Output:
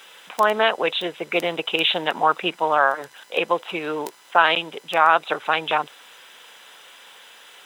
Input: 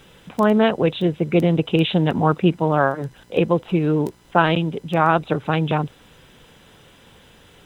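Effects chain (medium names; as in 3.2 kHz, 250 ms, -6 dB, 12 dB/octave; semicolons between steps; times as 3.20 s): high-pass 870 Hz 12 dB/octave; in parallel at +1.5 dB: peak limiter -14 dBFS, peak gain reduction 9.5 dB; 1.27–2.05 s: on the sum: companded quantiser 8-bit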